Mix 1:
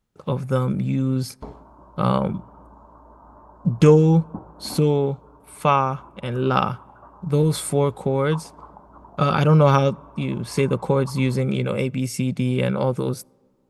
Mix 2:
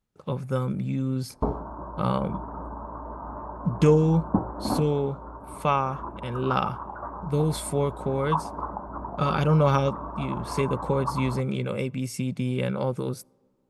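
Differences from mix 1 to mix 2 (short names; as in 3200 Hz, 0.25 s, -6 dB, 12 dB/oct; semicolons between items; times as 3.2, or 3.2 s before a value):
speech -5.5 dB; background +11.0 dB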